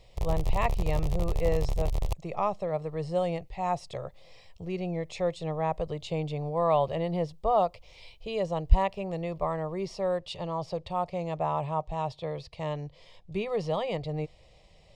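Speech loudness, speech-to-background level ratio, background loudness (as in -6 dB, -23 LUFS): -31.5 LUFS, 1.5 dB, -33.0 LUFS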